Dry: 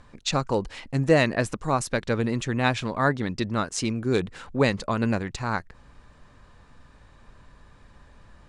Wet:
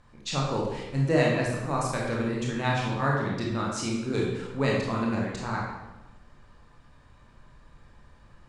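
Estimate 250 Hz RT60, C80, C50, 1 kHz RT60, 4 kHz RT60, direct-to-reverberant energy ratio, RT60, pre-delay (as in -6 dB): 1.2 s, 3.5 dB, 1.0 dB, 1.0 s, 0.80 s, -3.5 dB, 1.0 s, 21 ms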